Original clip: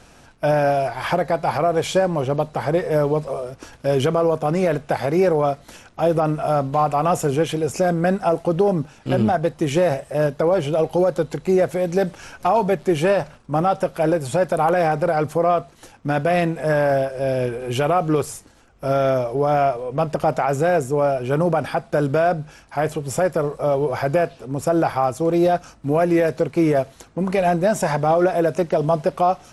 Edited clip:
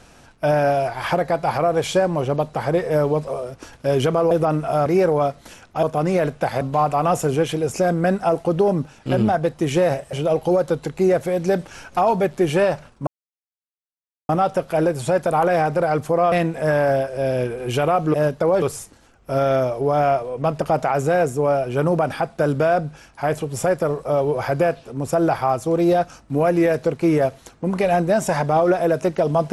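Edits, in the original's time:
4.31–5.09 s: swap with 6.06–6.61 s
10.13–10.61 s: move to 18.16 s
13.55 s: insert silence 1.22 s
15.58–16.34 s: delete

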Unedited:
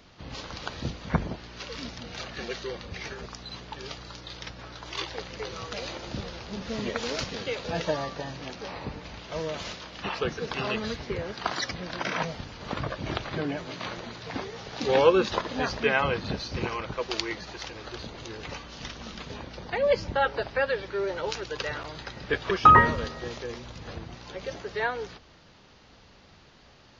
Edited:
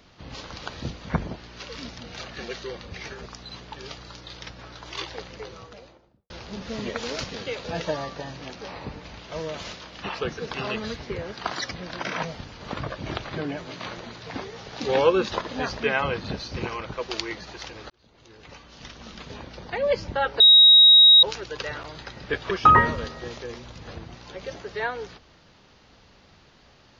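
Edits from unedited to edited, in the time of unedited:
5.06–6.30 s: studio fade out
17.90–19.38 s: fade in
20.40–21.23 s: bleep 3.8 kHz -9 dBFS

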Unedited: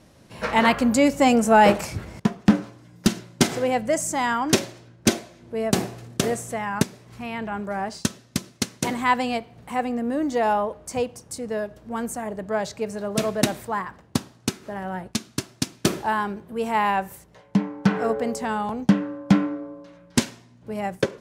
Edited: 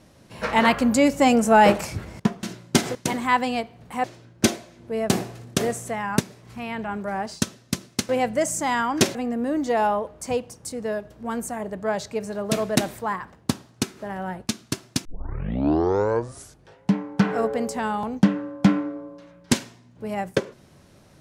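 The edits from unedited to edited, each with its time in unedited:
2.43–3.09 s: delete
3.61–4.67 s: swap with 8.72–9.81 s
15.71 s: tape start 1.88 s

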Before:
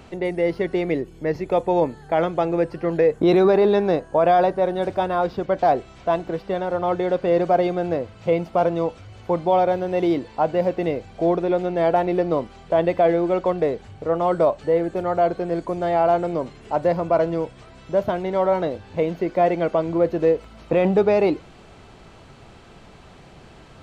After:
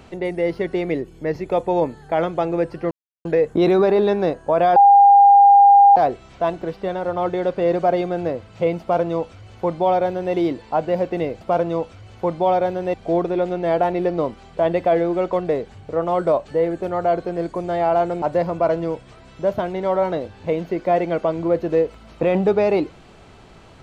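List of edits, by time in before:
2.91 s: insert silence 0.34 s
4.42–5.62 s: bleep 804 Hz -6.5 dBFS
8.47–10.00 s: copy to 11.07 s
16.35–16.72 s: delete

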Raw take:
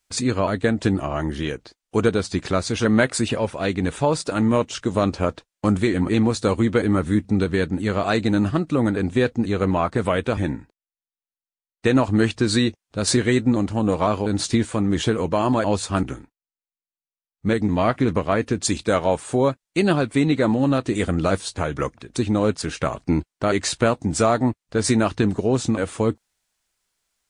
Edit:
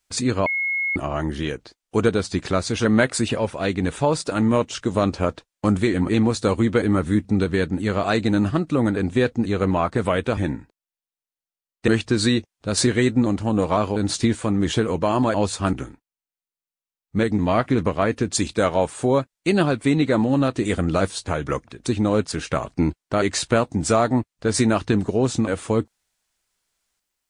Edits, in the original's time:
0.46–0.96 s: bleep 2.17 kHz -20.5 dBFS
11.88–12.18 s: delete

